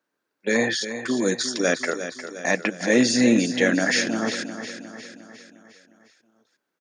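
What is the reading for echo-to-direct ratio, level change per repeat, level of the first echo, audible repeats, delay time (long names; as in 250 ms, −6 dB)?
−9.0 dB, −5.5 dB, −10.5 dB, 5, 356 ms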